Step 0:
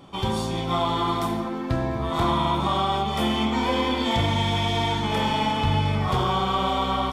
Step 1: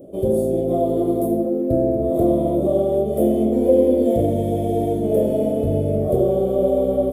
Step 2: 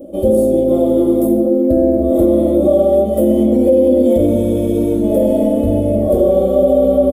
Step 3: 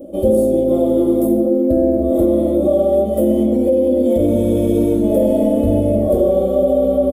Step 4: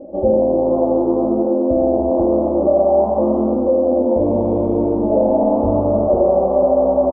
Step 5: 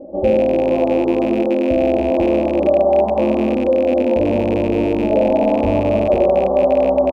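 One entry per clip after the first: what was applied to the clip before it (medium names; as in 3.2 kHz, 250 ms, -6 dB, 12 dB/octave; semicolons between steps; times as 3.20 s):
FFT filter 160 Hz 0 dB, 340 Hz +11 dB, 630 Hz +15 dB, 890 Hz -25 dB, 5.6 kHz -22 dB, 11 kHz +9 dB
comb 3.6 ms, depth 98%; peak limiter -7.5 dBFS, peak gain reduction 7 dB; trim +4 dB
gain riding 0.5 s; trim -2 dB
resonant low-pass 890 Hz, resonance Q 4.9; on a send: frequency-shifting echo 80 ms, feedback 62%, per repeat +85 Hz, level -13.5 dB; on the sum: trim -4 dB
rattle on loud lows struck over -23 dBFS, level -21 dBFS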